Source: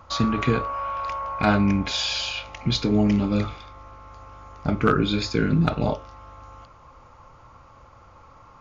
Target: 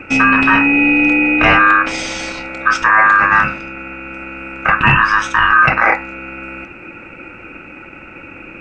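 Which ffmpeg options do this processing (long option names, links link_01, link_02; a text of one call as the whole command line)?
ffmpeg -i in.wav -af "highshelf=frequency=1600:width_type=q:width=3:gain=-9.5,apsyclip=15.5dB,aeval=exprs='val(0)*sin(2*PI*1400*n/s)':channel_layout=same,volume=-1.5dB" out.wav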